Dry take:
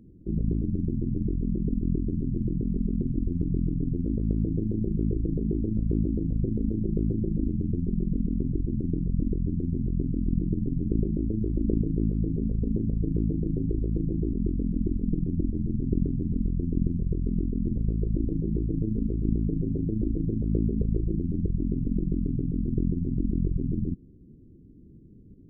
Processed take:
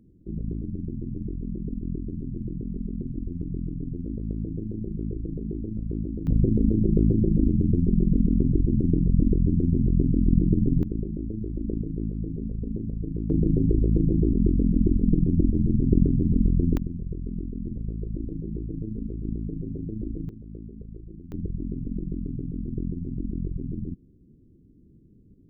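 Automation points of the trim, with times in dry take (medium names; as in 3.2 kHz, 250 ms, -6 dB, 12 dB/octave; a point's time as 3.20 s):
-4.5 dB
from 6.27 s +6 dB
from 10.83 s -4 dB
from 13.30 s +6 dB
from 16.77 s -5 dB
from 20.29 s -15 dB
from 21.32 s -4 dB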